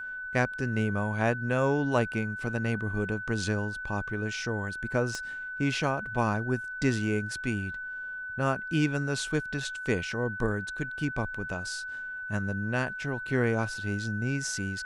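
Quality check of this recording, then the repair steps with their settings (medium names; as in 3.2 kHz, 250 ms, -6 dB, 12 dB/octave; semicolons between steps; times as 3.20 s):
whine 1.5 kHz -35 dBFS
5.15 s: pop -21 dBFS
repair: de-click; band-stop 1.5 kHz, Q 30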